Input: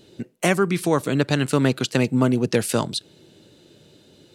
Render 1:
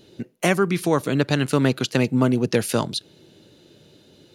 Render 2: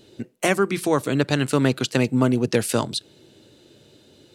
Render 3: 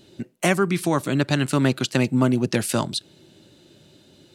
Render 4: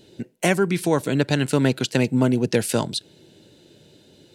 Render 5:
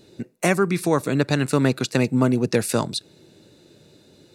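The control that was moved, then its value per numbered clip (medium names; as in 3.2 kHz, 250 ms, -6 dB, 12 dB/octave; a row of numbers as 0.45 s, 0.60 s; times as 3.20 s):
band-stop, frequency: 8 kHz, 170 Hz, 460 Hz, 1.2 kHz, 3.1 kHz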